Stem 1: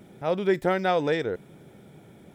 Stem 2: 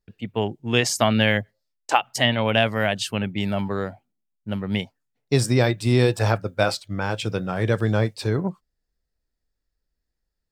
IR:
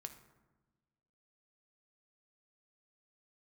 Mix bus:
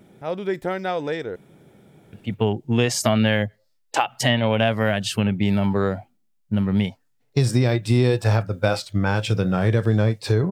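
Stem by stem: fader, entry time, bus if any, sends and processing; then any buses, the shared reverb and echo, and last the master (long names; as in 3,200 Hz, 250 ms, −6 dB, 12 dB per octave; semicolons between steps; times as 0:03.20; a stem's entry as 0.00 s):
−1.5 dB, 0.00 s, no send, no processing
+2.5 dB, 2.05 s, no send, harmonic and percussive parts rebalanced harmonic +9 dB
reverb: not used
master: downward compressor 3 to 1, threshold −18 dBFS, peak gain reduction 12 dB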